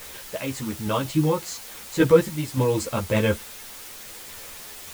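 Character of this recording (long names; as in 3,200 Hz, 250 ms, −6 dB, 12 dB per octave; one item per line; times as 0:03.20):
sample-and-hold tremolo, depth 70%
a quantiser's noise floor 8 bits, dither triangular
a shimmering, thickened sound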